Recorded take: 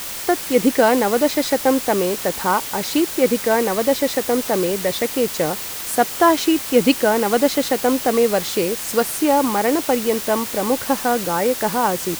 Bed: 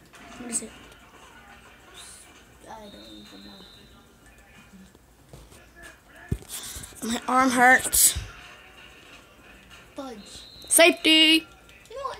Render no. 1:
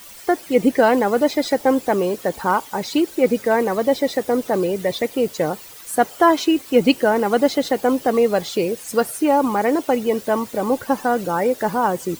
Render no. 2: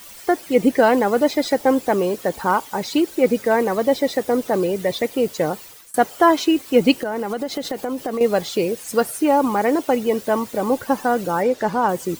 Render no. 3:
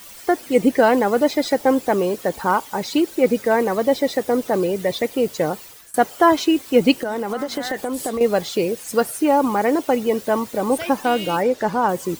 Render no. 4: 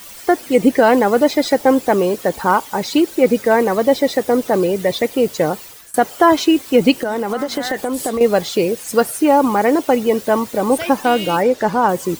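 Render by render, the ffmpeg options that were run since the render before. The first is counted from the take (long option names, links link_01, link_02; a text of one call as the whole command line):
ffmpeg -i in.wav -af "afftdn=noise_reduction=14:noise_floor=-29" out.wav
ffmpeg -i in.wav -filter_complex "[0:a]asettb=1/sr,asplit=3[link_01][link_02][link_03];[link_01]atrim=end=6.984[link_04];[link_02]atrim=start=6.98:end=8.21,asetpts=PTS-STARTPTS,afade=type=in:duration=0.004:curve=qsin,afade=type=out:start_time=1.226:duration=0.004:curve=qsin,acompressor=threshold=-20dB:ratio=12:attack=3.2:release=140:knee=1:detection=peak[link_05];[link_03]atrim=start=8.206[link_06];[link_04][link_05]acrossfade=duration=0.004:curve1=hsin:curve2=qsin[link_07];[link_07][link_06]acrossfade=duration=0.004:curve1=qsin:curve2=hsin,asettb=1/sr,asplit=3[link_08][link_09][link_10];[link_08]atrim=end=11.424[link_11];[link_09]atrim=start=11.42:end=11.89,asetpts=PTS-STARTPTS,afade=type=in:duration=0.004:curve=qsin,afade=type=out:start_time=0.466:duration=0.004:curve=qsin,acrossover=split=7500[link_12][link_13];[link_13]acompressor=threshold=-51dB:ratio=4:attack=1:release=60[link_14];[link_12][link_14]amix=inputs=2:normalize=0[link_15];[link_10]atrim=start=11.886[link_16];[link_11][link_15]acrossfade=duration=0.004:curve1=hsin:curve2=qsin[link_17];[link_17][link_16]acrossfade=duration=0.004:curve1=qsin:curve2=hsin,asplit=2[link_18][link_19];[link_18]atrim=end=5.94,asetpts=PTS-STARTPTS,afade=type=out:start_time=5.54:duration=0.4:curve=qsin:silence=0.0630957[link_20];[link_19]atrim=start=5.94,asetpts=PTS-STARTPTS,afade=type=in:duration=0.004:curve=hsin:silence=0.0630957[link_21];[link_20][link_21]concat=n=2:v=0:a=1" out.wav
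ffmpeg -i in.wav -i bed.wav -filter_complex "[1:a]volume=-15.5dB[link_01];[0:a][link_01]amix=inputs=2:normalize=0" out.wav
ffmpeg -i in.wav -af "volume=4dB,alimiter=limit=-2dB:level=0:latency=1" out.wav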